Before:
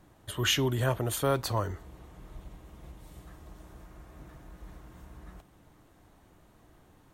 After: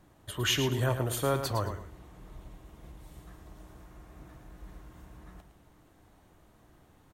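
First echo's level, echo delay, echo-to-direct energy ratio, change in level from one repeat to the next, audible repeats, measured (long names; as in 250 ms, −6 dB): −9.0 dB, 110 ms, −8.5 dB, −11.5 dB, 2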